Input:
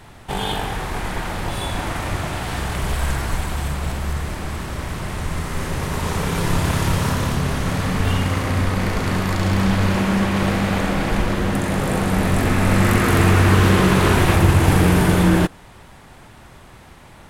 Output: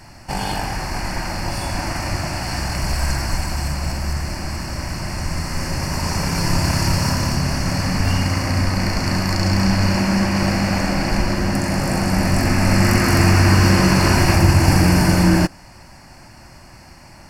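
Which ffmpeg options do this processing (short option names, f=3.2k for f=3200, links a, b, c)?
-af "superequalizer=7b=0.398:10b=0.708:13b=0.251:14b=3.16:15b=1.41,volume=1dB"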